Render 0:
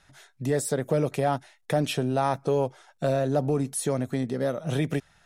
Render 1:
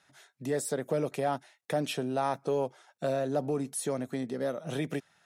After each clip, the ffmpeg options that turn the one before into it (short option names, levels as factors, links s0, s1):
-af "highpass=180,volume=0.596"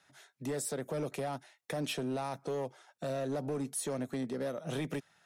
-filter_complex "[0:a]acrossover=split=160|3200[s0][s1][s2];[s1]alimiter=level_in=1.33:limit=0.0631:level=0:latency=1:release=89,volume=0.75[s3];[s0][s3][s2]amix=inputs=3:normalize=0,volume=28.2,asoftclip=hard,volume=0.0355,volume=0.891"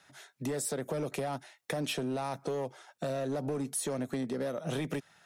-af "acompressor=threshold=0.0158:ratio=6,volume=1.88"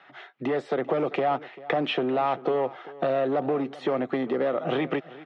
-af "highpass=170,equalizer=f=350:t=q:w=4:g=8,equalizer=f=500:t=q:w=4:g=4,equalizer=f=750:t=q:w=4:g=9,equalizer=f=1200:t=q:w=4:g=9,equalizer=f=2000:t=q:w=4:g=6,equalizer=f=3000:t=q:w=4:g=5,lowpass=f=3400:w=0.5412,lowpass=f=3400:w=1.3066,aecho=1:1:392:0.119,volume=1.68"